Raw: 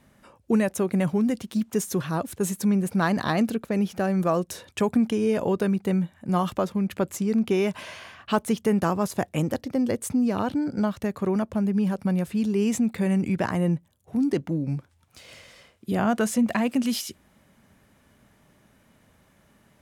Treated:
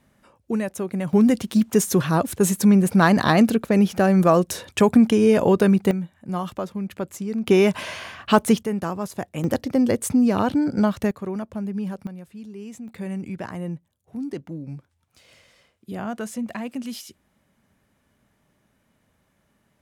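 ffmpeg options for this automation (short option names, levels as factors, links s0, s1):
-af "asetnsamples=n=441:p=0,asendcmd='1.13 volume volume 7dB;5.91 volume volume -3.5dB;7.47 volume volume 7dB;8.63 volume volume -3.5dB;9.44 volume volume 5dB;11.11 volume volume -4.5dB;12.07 volume volume -14dB;12.88 volume volume -7dB',volume=0.708"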